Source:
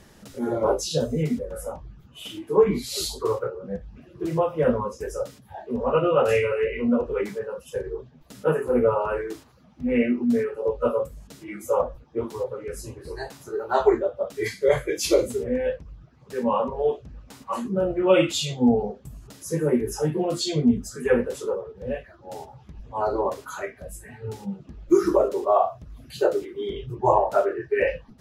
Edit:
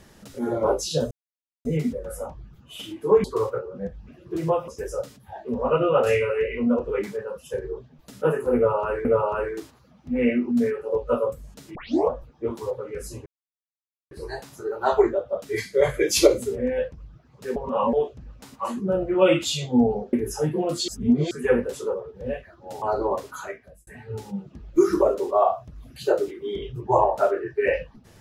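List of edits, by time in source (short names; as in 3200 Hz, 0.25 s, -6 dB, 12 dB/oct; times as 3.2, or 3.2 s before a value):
1.11 insert silence 0.54 s
2.7–3.13 cut
4.57–4.9 cut
8.78–9.27 loop, 2 plays
11.48 tape start 0.35 s
12.99 insert silence 0.85 s
14.82–15.15 gain +5 dB
16.44–16.81 reverse
19.01–19.74 cut
20.49–20.92 reverse
22.43–22.96 cut
23.49–24.01 fade out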